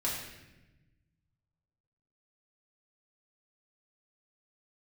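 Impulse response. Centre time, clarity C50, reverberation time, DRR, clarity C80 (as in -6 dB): 58 ms, 2.0 dB, 1.0 s, -6.0 dB, 4.5 dB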